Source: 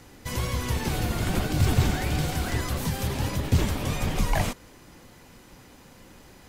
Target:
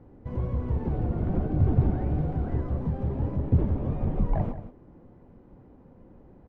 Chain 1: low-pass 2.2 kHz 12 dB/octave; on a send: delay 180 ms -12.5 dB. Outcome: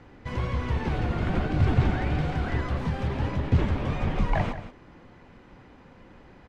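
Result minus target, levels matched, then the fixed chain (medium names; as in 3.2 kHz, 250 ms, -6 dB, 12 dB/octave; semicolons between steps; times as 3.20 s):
2 kHz band +16.5 dB
low-pass 590 Hz 12 dB/octave; on a send: delay 180 ms -12.5 dB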